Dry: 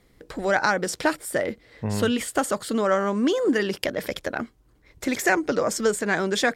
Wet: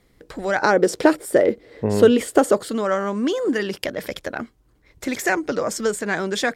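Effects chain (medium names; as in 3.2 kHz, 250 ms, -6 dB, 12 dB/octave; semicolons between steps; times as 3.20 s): 0.62–2.68 s: peaking EQ 410 Hz +13 dB 1.5 oct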